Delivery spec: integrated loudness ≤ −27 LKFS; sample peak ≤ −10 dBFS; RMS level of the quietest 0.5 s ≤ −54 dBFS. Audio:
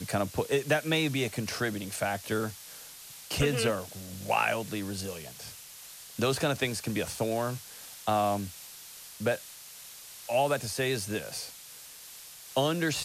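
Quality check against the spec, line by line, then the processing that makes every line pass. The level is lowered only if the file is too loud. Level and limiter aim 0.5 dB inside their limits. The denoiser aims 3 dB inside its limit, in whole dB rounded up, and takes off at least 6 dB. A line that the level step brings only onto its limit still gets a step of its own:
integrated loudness −30.5 LKFS: in spec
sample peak −13.0 dBFS: in spec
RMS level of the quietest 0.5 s −48 dBFS: out of spec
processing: broadband denoise 9 dB, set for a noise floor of −48 dBFS

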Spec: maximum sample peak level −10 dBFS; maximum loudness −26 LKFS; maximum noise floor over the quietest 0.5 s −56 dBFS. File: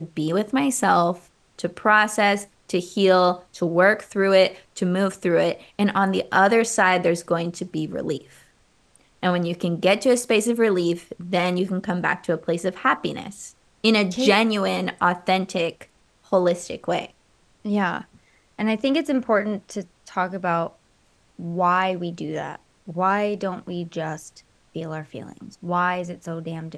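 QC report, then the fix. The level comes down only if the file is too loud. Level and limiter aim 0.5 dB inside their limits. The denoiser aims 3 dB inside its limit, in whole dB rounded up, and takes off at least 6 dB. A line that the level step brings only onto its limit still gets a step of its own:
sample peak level −3.5 dBFS: out of spec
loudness −22.0 LKFS: out of spec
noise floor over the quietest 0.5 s −61 dBFS: in spec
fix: level −4.5 dB
brickwall limiter −10.5 dBFS

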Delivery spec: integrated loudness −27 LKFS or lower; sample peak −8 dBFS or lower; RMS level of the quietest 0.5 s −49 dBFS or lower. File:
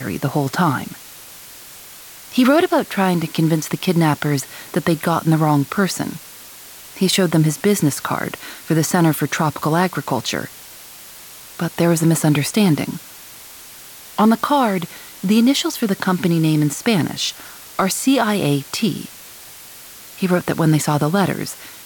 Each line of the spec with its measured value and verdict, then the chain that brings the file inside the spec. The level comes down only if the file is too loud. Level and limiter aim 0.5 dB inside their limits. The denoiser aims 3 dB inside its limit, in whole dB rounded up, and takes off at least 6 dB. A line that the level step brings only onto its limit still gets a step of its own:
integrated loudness −18.5 LKFS: out of spec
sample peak −5.0 dBFS: out of spec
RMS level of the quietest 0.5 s −39 dBFS: out of spec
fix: broadband denoise 6 dB, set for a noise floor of −39 dBFS
level −9 dB

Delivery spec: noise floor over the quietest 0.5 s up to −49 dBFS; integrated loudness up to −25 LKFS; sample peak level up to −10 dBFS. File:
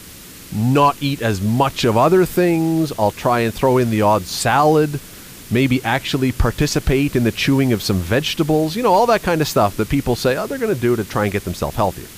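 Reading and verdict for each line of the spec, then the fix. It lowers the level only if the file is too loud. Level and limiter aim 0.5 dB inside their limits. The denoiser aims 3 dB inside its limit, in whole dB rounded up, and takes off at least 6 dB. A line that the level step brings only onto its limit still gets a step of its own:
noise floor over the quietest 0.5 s −38 dBFS: out of spec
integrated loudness −17.5 LKFS: out of spec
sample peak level −4.0 dBFS: out of spec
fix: broadband denoise 6 dB, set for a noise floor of −38 dBFS
level −8 dB

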